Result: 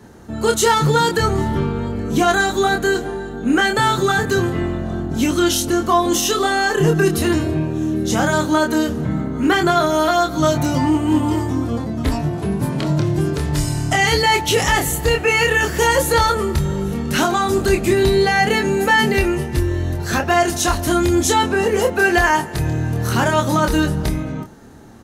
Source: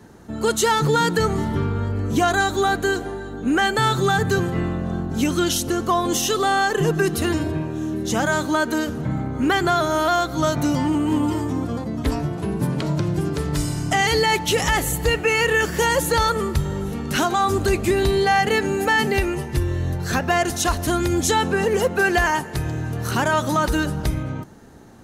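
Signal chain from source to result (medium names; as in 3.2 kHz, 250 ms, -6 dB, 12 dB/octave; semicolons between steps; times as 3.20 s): doubling 26 ms -4.5 dB; trim +2 dB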